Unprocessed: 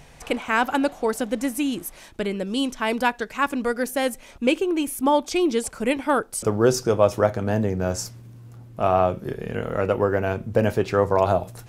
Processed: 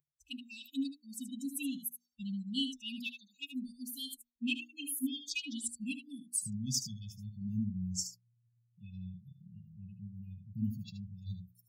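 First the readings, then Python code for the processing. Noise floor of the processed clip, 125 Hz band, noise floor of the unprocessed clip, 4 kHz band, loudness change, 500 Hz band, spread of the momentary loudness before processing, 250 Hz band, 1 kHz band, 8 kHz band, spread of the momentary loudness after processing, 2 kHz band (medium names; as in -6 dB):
-79 dBFS, -13.5 dB, -46 dBFS, -7.0 dB, -16.0 dB, under -40 dB, 9 LU, -13.5 dB, under -40 dB, -6.0 dB, 13 LU, -18.0 dB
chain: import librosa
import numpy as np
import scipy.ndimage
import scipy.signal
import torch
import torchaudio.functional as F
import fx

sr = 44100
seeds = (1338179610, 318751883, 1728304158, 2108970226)

p1 = fx.bin_expand(x, sr, power=2.0)
p2 = 10.0 ** (-19.0 / 20.0) * np.tanh(p1 / 10.0 ** (-19.0 / 20.0))
p3 = p1 + (p2 * 10.0 ** (-9.0 / 20.0))
p4 = fx.brickwall_bandstop(p3, sr, low_hz=280.0, high_hz=2500.0)
p5 = fx.noise_reduce_blind(p4, sr, reduce_db=27)
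p6 = scipy.signal.sosfilt(scipy.signal.butter(2, 58.0, 'highpass', fs=sr, output='sos'), p5)
p7 = fx.low_shelf(p6, sr, hz=120.0, db=-12.0)
p8 = fx.hum_notches(p7, sr, base_hz=60, count=5)
p9 = p8 + 10.0 ** (-10.0 / 20.0) * np.pad(p8, (int(76 * sr / 1000.0), 0))[:len(p8)]
y = p9 * 10.0 ** (-4.5 / 20.0)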